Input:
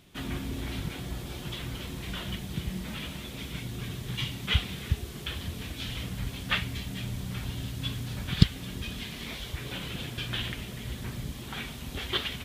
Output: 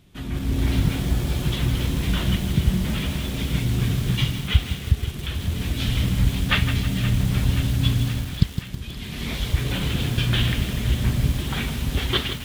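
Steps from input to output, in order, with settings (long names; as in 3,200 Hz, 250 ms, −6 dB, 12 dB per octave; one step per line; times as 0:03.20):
low-shelf EQ 220 Hz +9.5 dB
automatic gain control gain up to 10 dB
on a send: feedback echo with a high-pass in the loop 524 ms, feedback 76%, high-pass 640 Hz, level −13 dB
on the sum: feedback echo at a low word length 160 ms, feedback 55%, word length 5 bits, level −9 dB
level −2.5 dB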